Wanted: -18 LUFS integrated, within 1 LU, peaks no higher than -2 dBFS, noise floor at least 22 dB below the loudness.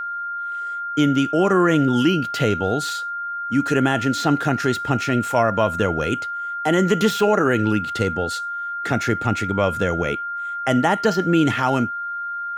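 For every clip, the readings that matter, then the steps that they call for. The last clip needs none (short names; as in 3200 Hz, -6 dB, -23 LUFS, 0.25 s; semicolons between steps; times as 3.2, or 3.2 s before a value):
steady tone 1400 Hz; tone level -25 dBFS; loudness -20.5 LUFS; peak -5.5 dBFS; loudness target -18.0 LUFS
-> notch 1400 Hz, Q 30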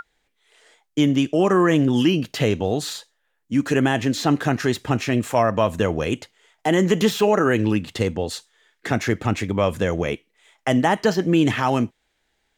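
steady tone none; loudness -21.0 LUFS; peak -6.0 dBFS; loudness target -18.0 LUFS
-> gain +3 dB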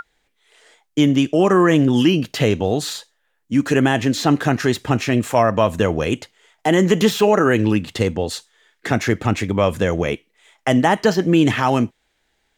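loudness -18.0 LUFS; peak -3.0 dBFS; noise floor -68 dBFS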